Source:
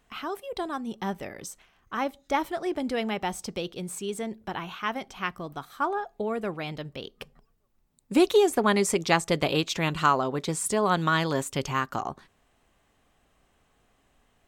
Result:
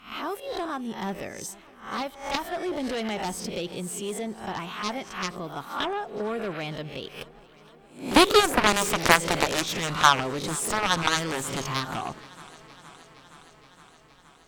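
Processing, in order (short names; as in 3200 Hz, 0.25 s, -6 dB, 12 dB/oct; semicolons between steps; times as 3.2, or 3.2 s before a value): spectral swells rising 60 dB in 0.39 s; 2.02–2.52 bell 340 Hz -9 dB 1.5 oct; added harmonics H 7 -12 dB, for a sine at -5.5 dBFS; warbling echo 0.468 s, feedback 75%, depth 53 cents, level -22 dB; gain +3.5 dB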